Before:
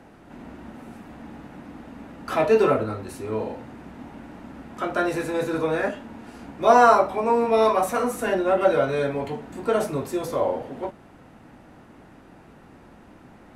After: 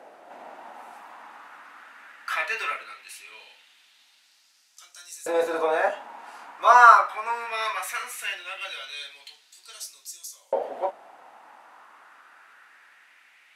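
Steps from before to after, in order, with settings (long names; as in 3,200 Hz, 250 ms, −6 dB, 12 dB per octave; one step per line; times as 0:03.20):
auto-filter high-pass saw up 0.19 Hz 570–7,000 Hz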